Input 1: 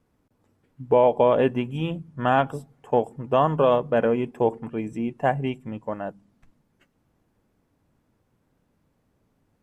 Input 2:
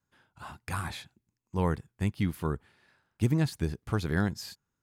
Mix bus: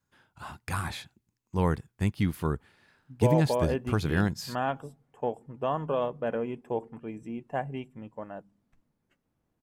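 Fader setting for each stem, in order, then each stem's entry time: -9.5 dB, +2.0 dB; 2.30 s, 0.00 s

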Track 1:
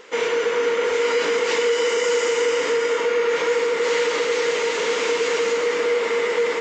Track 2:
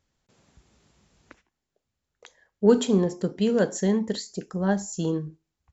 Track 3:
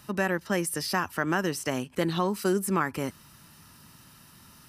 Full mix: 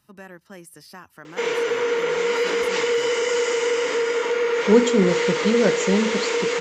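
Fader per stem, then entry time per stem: -1.5 dB, +2.5 dB, -14.5 dB; 1.25 s, 2.05 s, 0.00 s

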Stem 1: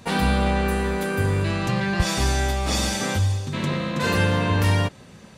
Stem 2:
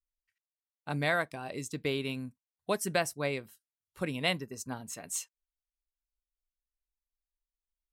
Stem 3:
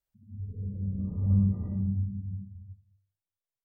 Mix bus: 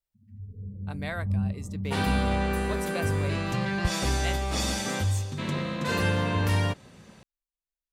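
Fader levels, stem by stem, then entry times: -5.0 dB, -6.0 dB, -3.5 dB; 1.85 s, 0.00 s, 0.00 s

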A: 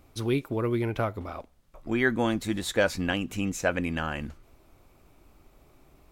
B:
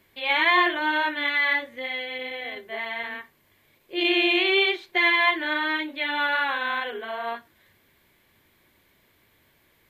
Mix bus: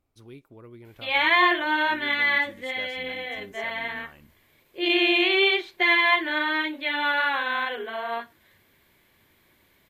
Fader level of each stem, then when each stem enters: -19.0 dB, +0.5 dB; 0.00 s, 0.85 s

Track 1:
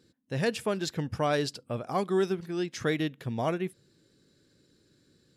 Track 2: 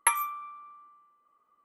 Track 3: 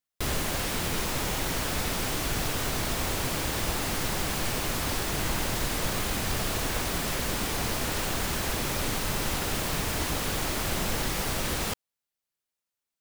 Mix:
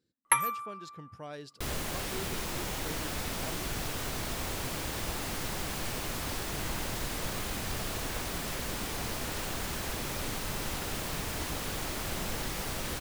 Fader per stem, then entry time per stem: -16.0 dB, -0.5 dB, -6.0 dB; 0.00 s, 0.25 s, 1.40 s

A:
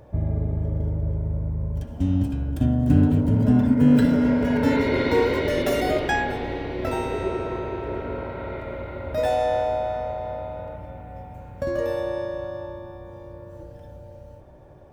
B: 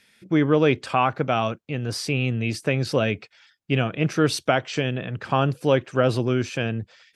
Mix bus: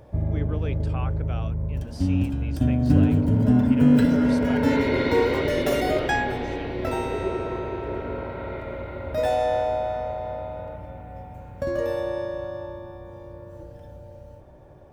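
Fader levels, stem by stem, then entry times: -0.5 dB, -16.0 dB; 0.00 s, 0.00 s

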